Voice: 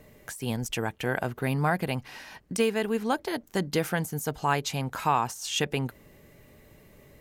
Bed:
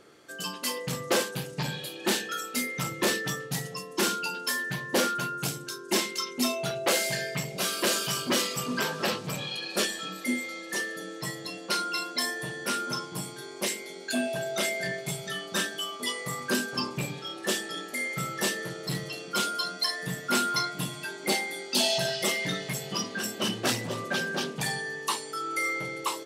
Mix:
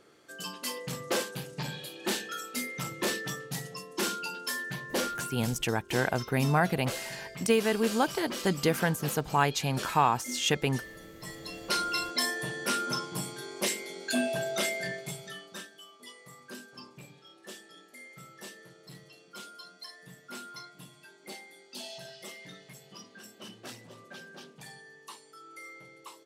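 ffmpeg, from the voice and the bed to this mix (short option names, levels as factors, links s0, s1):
-filter_complex "[0:a]adelay=4900,volume=1.06[s0];[1:a]volume=2.24,afade=t=out:st=4.84:d=0.89:silence=0.446684,afade=t=in:st=11.17:d=0.66:silence=0.266073,afade=t=out:st=14.39:d=1.28:silence=0.133352[s1];[s0][s1]amix=inputs=2:normalize=0"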